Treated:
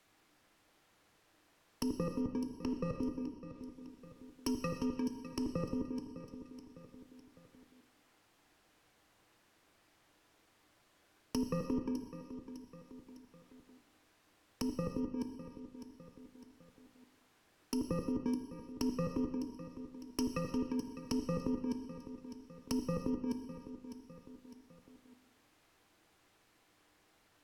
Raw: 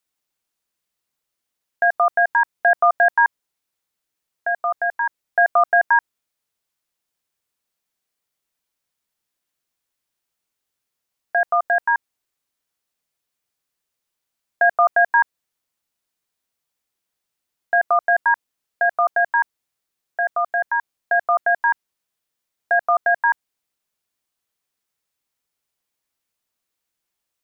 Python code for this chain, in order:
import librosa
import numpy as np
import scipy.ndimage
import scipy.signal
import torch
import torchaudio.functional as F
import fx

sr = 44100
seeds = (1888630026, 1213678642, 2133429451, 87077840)

p1 = fx.bit_reversed(x, sr, seeds[0], block=64)
p2 = fx.env_lowpass_down(p1, sr, base_hz=610.0, full_db=-17.0)
p3 = fx.lowpass(p2, sr, hz=1800.0, slope=6)
p4 = fx.peak_eq(p3, sr, hz=300.0, db=7.0, octaves=0.21)
p5 = fx.over_compress(p4, sr, threshold_db=-38.0, ratio=-1.0)
p6 = p5 + fx.echo_feedback(p5, sr, ms=605, feedback_pct=34, wet_db=-17, dry=0)
p7 = fx.rev_gated(p6, sr, seeds[1], gate_ms=400, shape='falling', drr_db=5.0)
p8 = fx.band_squash(p7, sr, depth_pct=40)
y = p8 * librosa.db_to_amplitude(3.0)